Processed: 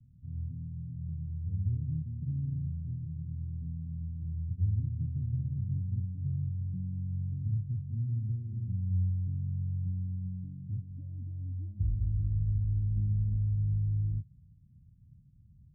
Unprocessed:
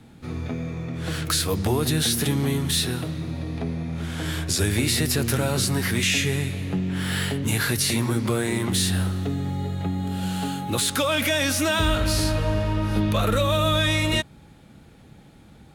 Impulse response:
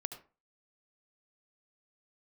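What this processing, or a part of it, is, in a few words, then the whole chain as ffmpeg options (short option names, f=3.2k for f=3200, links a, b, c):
the neighbour's flat through the wall: -af "lowpass=f=150:w=0.5412,lowpass=f=150:w=1.3066,equalizer=f=98:t=o:w=0.73:g=5,volume=-7.5dB"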